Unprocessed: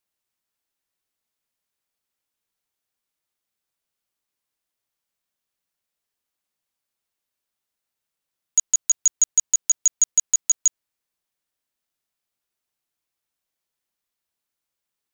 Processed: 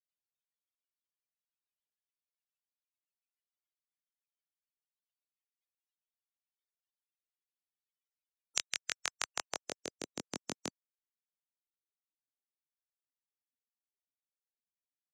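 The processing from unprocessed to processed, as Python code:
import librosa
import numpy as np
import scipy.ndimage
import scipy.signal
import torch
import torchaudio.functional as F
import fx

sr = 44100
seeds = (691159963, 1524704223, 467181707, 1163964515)

y = fx.spec_gate(x, sr, threshold_db=-30, keep='weak')
y = fx.rotary_switch(y, sr, hz=7.0, then_hz=0.8, switch_at_s=5.19)
y = fx.filter_sweep_bandpass(y, sr, from_hz=3000.0, to_hz=240.0, start_s=8.59, end_s=10.24, q=1.3)
y = fx.band_squash(y, sr, depth_pct=70)
y = y * librosa.db_to_amplitude(18.0)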